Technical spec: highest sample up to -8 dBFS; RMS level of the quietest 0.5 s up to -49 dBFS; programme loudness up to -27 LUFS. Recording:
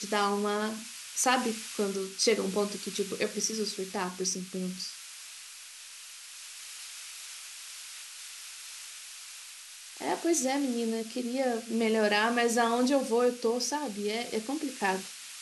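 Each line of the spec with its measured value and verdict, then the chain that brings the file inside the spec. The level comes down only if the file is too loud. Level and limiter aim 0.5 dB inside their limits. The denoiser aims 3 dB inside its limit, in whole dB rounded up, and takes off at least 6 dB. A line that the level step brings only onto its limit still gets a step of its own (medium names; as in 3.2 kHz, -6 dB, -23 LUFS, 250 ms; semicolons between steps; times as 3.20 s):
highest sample -12.5 dBFS: pass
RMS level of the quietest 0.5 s -47 dBFS: fail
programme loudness -30.5 LUFS: pass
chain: noise reduction 6 dB, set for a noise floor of -47 dBFS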